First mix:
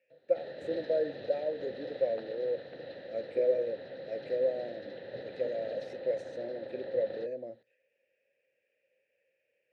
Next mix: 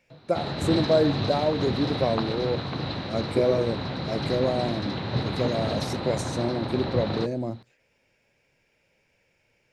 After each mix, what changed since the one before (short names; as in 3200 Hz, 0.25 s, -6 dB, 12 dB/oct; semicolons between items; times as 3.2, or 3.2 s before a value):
background: add bell 2500 Hz +9.5 dB 0.4 oct; master: remove vowel filter e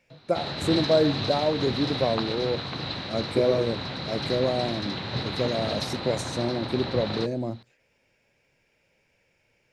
background: add tilt shelf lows -4.5 dB, about 1400 Hz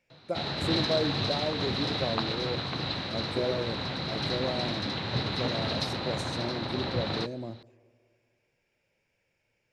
speech -8.5 dB; reverb: on, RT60 2.4 s